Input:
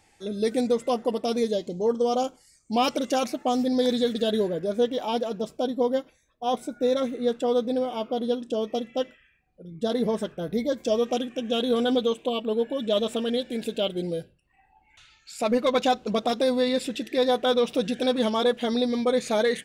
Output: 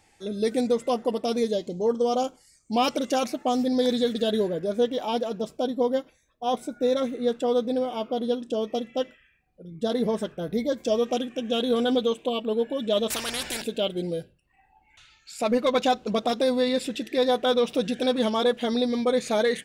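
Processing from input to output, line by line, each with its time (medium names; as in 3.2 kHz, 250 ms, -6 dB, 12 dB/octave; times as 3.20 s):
13.10–13.62 s: spectrum-flattening compressor 4:1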